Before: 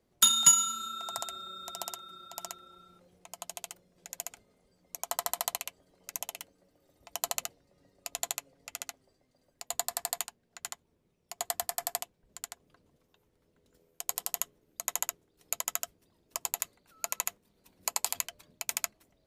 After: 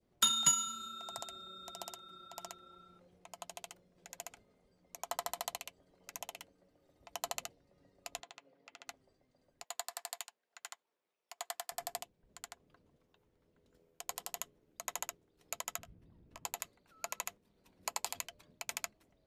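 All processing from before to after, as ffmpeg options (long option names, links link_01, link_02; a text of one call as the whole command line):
ffmpeg -i in.wav -filter_complex "[0:a]asettb=1/sr,asplit=3[link_01][link_02][link_03];[link_01]atrim=end=8.204[link_04];[link_02]atrim=start=8.2:end=8.88,asetpts=PTS-STARTPTS,afade=type=in:duration=0.004:curve=qsin,afade=type=out:start_time=0.676:duration=0.004:curve=qsin,highpass=230,lowpass=4000,acompressor=threshold=-47dB:ratio=3:attack=3.2:release=140:knee=1:detection=peak[link_05];[link_03]atrim=start=8.876[link_06];[link_04][link_05]acrossfade=duration=0.004:curve1=hsin:curve2=qsin[link_07];[link_07][link_06]acrossfade=duration=0.004:curve1=qsin:curve2=hsin,asettb=1/sr,asplit=3[link_08][link_09][link_10];[link_08]atrim=end=9.644[link_11];[link_09]atrim=start=9.64:end=11.72,asetpts=PTS-STARTPTS,afade=type=in:duration=0.004:curve=qsin,afade=type=out:start_time=2.076:duration=0.004:curve=qsin,aeval=exprs='if(lt(val(0),0),0.708*val(0),val(0))':channel_layout=same,highpass=780[link_12];[link_10]atrim=start=11.716[link_13];[link_11][link_12]acrossfade=duration=0.004:curve1=hsin:curve2=qsin[link_14];[link_14][link_13]acrossfade=duration=0.004:curve1=qsin:curve2=hsin,asettb=1/sr,asplit=3[link_15][link_16][link_17];[link_15]atrim=end=15.784[link_18];[link_16]atrim=start=15.78:end=16.45,asetpts=PTS-STARTPTS,afade=type=in:duration=0.004:curve=qsin,afade=type=out:start_time=0.666:duration=0.004:curve=qsin,bass=frequency=250:gain=14,treble=frequency=4000:gain=-11,acompressor=threshold=-47dB:ratio=2.5:attack=3.2:release=140:knee=1:detection=peak,asplit=2[link_19][link_20];[link_20]adelay=18,volume=-12.5dB[link_21];[link_19][link_21]amix=inputs=2:normalize=0,atrim=end_sample=29547[link_22];[link_17]atrim=start=16.446[link_23];[link_18][link_22]acrossfade=duration=0.004:curve1=hsin:curve2=qsin[link_24];[link_24][link_23]acrossfade=duration=0.004:curve1=qsin:curve2=hsin,lowpass=frequency=3600:poles=1,adynamicequalizer=threshold=0.00282:dfrequency=1300:dqfactor=0.78:tfrequency=1300:tqfactor=0.78:attack=5:release=100:ratio=0.375:range=3.5:mode=cutabove:tftype=bell,volume=-2dB" out.wav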